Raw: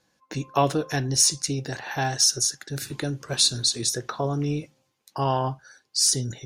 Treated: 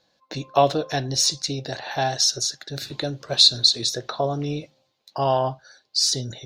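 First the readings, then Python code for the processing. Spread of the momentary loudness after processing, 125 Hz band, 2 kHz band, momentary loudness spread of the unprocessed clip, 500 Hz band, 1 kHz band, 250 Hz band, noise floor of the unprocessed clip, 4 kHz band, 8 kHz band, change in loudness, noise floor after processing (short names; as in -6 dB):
15 LU, -2.0 dB, -0.5 dB, 13 LU, +4.5 dB, +3.0 dB, -1.5 dB, -72 dBFS, +5.5 dB, -3.5 dB, +2.5 dB, -69 dBFS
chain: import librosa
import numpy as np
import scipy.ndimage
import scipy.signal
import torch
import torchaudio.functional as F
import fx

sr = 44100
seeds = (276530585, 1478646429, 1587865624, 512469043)

y = fx.graphic_eq_15(x, sr, hz=(630, 4000, 10000), db=(10, 12, -12))
y = y * 10.0 ** (-2.0 / 20.0)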